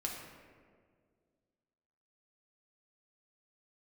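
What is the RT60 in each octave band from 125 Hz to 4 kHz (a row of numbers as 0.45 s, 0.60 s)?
2.4 s, 2.4 s, 2.2 s, 1.6 s, 1.4 s, 0.95 s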